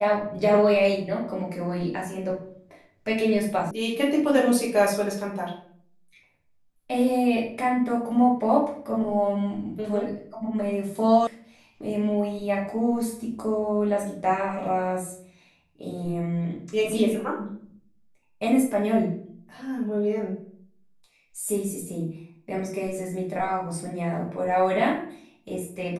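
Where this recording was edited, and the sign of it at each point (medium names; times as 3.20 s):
3.71 s: sound stops dead
11.27 s: sound stops dead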